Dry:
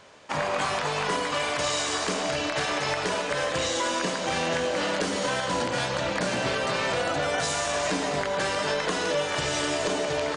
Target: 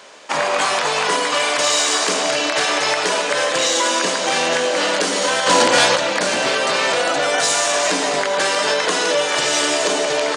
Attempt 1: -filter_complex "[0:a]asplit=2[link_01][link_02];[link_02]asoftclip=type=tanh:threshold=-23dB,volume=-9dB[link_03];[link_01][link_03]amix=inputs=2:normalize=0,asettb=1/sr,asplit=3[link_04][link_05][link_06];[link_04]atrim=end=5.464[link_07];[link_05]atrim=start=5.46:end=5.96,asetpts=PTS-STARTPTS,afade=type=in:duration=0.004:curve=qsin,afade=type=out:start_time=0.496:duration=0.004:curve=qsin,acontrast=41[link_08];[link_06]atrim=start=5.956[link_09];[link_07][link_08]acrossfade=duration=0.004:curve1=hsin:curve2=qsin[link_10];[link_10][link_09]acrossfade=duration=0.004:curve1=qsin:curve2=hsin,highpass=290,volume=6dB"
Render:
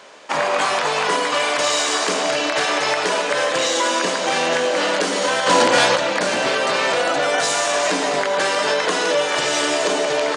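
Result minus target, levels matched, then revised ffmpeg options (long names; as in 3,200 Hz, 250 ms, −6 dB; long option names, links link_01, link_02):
8,000 Hz band −3.0 dB
-filter_complex "[0:a]asplit=2[link_01][link_02];[link_02]asoftclip=type=tanh:threshold=-23dB,volume=-9dB[link_03];[link_01][link_03]amix=inputs=2:normalize=0,asettb=1/sr,asplit=3[link_04][link_05][link_06];[link_04]atrim=end=5.464[link_07];[link_05]atrim=start=5.46:end=5.96,asetpts=PTS-STARTPTS,afade=type=in:duration=0.004:curve=qsin,afade=type=out:start_time=0.496:duration=0.004:curve=qsin,acontrast=41[link_08];[link_06]atrim=start=5.956[link_09];[link_07][link_08]acrossfade=duration=0.004:curve1=hsin:curve2=qsin[link_10];[link_10][link_09]acrossfade=duration=0.004:curve1=qsin:curve2=hsin,highpass=290,highshelf=frequency=3600:gain=5.5,volume=6dB"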